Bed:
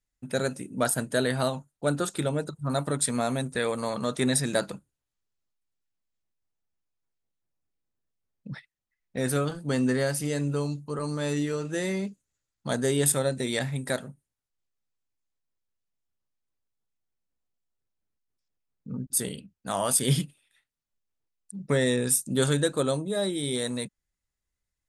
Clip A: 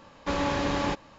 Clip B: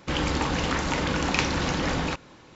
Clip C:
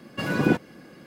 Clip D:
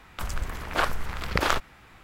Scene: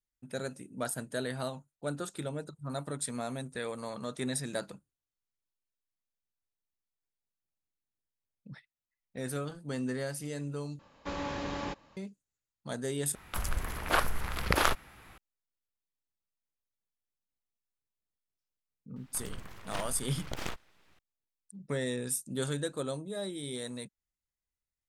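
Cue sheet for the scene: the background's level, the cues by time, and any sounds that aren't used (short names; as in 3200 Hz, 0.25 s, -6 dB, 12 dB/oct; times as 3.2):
bed -9.5 dB
10.79 replace with A -9 dB
13.15 replace with D -2.5 dB + bell 11000 Hz +12.5 dB 0.32 oct
18.96 add D -12 dB + full-wave rectifier
not used: B, C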